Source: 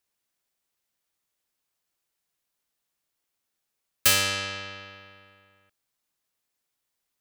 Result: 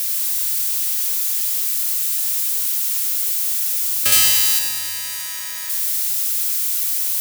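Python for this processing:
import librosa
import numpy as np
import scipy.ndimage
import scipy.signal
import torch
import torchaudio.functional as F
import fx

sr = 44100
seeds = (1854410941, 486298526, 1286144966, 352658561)

y = x + 0.5 * 10.0 ** (-17.0 / 20.0) * np.diff(np.sign(x), prepend=np.sign(x[:1]))
y = fx.tilt_eq(y, sr, slope=2.5, at=(4.12, 4.59))
y = fx.echo_feedback(y, sr, ms=101, feedback_pct=59, wet_db=-6.5)
y = y * 10.0 ** (-1.0 / 20.0)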